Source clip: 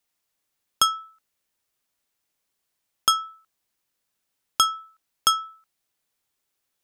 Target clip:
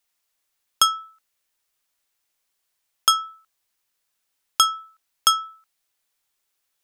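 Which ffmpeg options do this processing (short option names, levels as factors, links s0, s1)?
-af "equalizer=f=170:w=0.36:g=-8.5,volume=1.41"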